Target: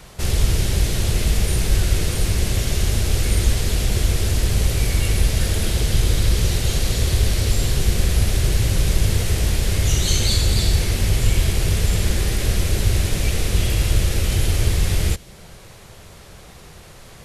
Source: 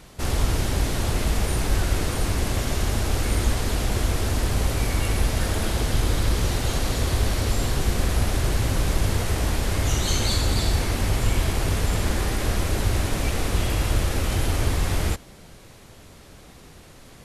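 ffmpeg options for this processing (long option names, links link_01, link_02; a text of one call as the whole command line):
ffmpeg -i in.wav -filter_complex "[0:a]equalizer=frequency=270:width_type=o:width=0.44:gain=-10,acrossover=split=530|1800[link_01][link_02][link_03];[link_02]acompressor=threshold=-51dB:ratio=6[link_04];[link_01][link_04][link_03]amix=inputs=3:normalize=0,volume=5dB" out.wav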